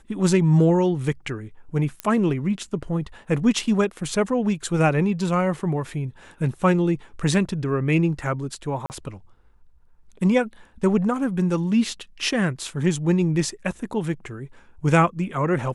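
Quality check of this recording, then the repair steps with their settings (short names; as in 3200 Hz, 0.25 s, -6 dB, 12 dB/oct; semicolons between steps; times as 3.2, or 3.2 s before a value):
2 pop -12 dBFS
8.86–8.9 gap 39 ms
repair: de-click; interpolate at 8.86, 39 ms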